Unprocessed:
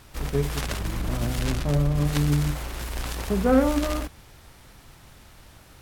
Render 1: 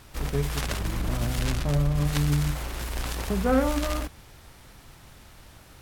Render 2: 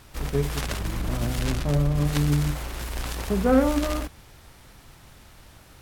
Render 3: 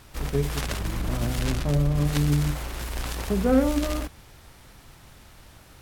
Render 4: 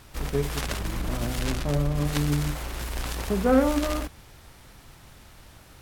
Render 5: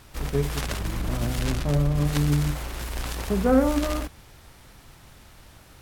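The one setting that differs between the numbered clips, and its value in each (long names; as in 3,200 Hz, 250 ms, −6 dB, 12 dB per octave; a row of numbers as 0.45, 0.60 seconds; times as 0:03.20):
dynamic equaliser, frequency: 340, 9,000, 1,100, 100, 2,800 Hertz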